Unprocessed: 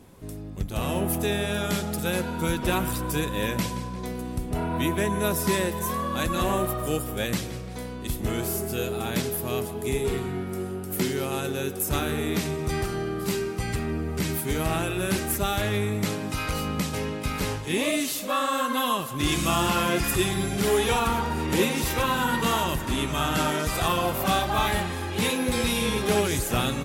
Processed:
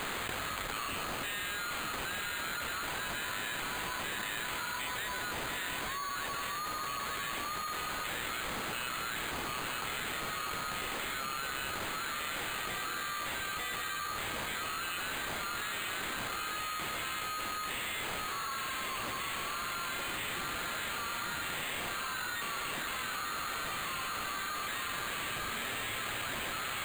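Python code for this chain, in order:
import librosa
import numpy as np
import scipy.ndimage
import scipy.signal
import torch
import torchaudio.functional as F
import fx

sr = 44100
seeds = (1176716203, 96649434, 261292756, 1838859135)

y = fx.cvsd(x, sr, bps=64000)
y = scipy.signal.sosfilt(scipy.signal.ellip(4, 1.0, 40, 1200.0, 'highpass', fs=sr, output='sos'), y)
y = fx.peak_eq(y, sr, hz=3600.0, db=-7.0, octaves=1.9)
y = 10.0 ** (-37.5 / 20.0) * np.tanh(y / 10.0 ** (-37.5 / 20.0))
y = y + 10.0 ** (-4.0 / 20.0) * np.pad(y, (int(895 * sr / 1000.0), 0))[:len(y)]
y = np.repeat(y[::8], 8)[:len(y)]
y = fx.env_flatten(y, sr, amount_pct=100)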